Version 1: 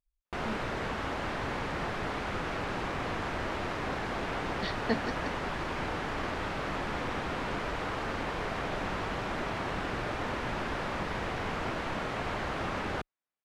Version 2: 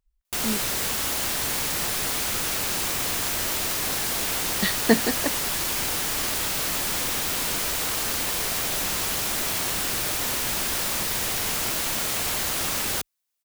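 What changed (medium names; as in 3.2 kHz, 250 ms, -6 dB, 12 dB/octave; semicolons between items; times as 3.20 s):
speech +11.5 dB; background: remove low-pass 1.6 kHz 12 dB/octave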